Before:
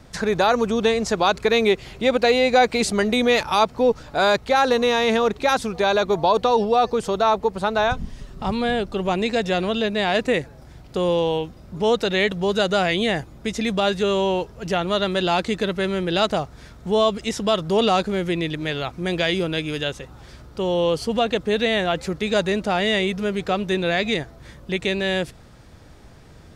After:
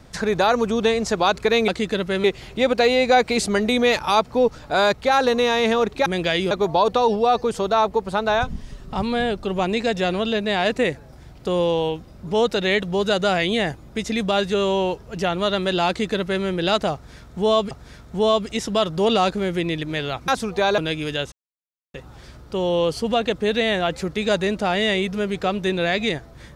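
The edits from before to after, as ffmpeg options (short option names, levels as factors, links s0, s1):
-filter_complex "[0:a]asplit=9[s0][s1][s2][s3][s4][s5][s6][s7][s8];[s0]atrim=end=1.682[s9];[s1]atrim=start=15.368:end=15.932[s10];[s2]atrim=start=1.678:end=5.502[s11];[s3]atrim=start=18.998:end=19.452[s12];[s4]atrim=start=5.998:end=17.202[s13];[s5]atrim=start=16.428:end=19.002[s14];[s6]atrim=start=5.498:end=6.002[s15];[s7]atrim=start=19.448:end=19.99,asetpts=PTS-STARTPTS,afade=t=out:st=0.538:d=0.004:c=hsin,apad=pad_dur=0.62[s16];[s8]atrim=start=19.99,asetpts=PTS-STARTPTS,afade=t=in:d=0.004:c=hsin[s17];[s9][s10]acrossfade=d=0.004:c1=hsin:c2=hsin[s18];[s18][s11]acrossfade=d=0.004:c1=hsin:c2=hsin[s19];[s19][s12]acrossfade=d=0.004:c1=hsin:c2=hsin[s20];[s20][s13]acrossfade=d=0.004:c1=hsin:c2=hsin[s21];[s21][s14]acrossfade=d=0.004:c1=hsin:c2=hsin[s22];[s22][s15]acrossfade=d=0.004:c1=hsin:c2=hsin[s23];[s16][s17]concat=n=2:v=0:a=1[s24];[s23][s24]acrossfade=d=0.004:c1=hsin:c2=hsin"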